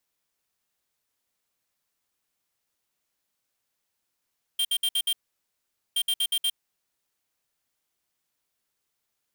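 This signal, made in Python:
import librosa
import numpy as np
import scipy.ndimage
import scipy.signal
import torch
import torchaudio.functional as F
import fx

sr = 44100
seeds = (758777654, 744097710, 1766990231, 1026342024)

y = fx.beep_pattern(sr, wave='square', hz=3180.0, on_s=0.06, off_s=0.06, beeps=5, pause_s=0.83, groups=2, level_db=-24.5)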